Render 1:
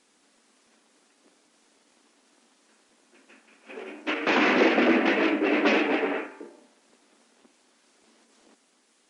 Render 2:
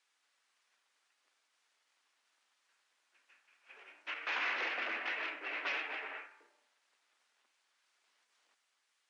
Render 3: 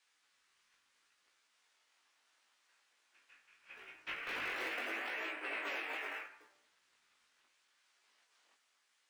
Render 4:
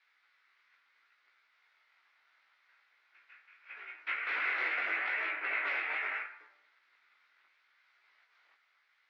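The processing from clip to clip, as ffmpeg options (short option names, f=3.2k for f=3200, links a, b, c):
-af "highpass=1.3k,aemphasis=mode=reproduction:type=50kf,volume=-8dB"
-filter_complex "[0:a]acrossover=split=680[a][b];[a]acrusher=samples=23:mix=1:aa=0.000001:lfo=1:lforange=36.8:lforate=0.32[c];[b]alimiter=level_in=11dB:limit=-24dB:level=0:latency=1:release=120,volume=-11dB[d];[c][d]amix=inputs=2:normalize=0,flanger=delay=15.5:depth=6.3:speed=0.76,volume=5.5dB"
-af "highpass=420,equalizer=f=510:t=q:w=4:g=-3,equalizer=f=1.4k:t=q:w=4:g=7,equalizer=f=2.1k:t=q:w=4:g=9,equalizer=f=3k:t=q:w=4:g=-4,lowpass=f=4.2k:w=0.5412,lowpass=f=4.2k:w=1.3066,volume=2dB"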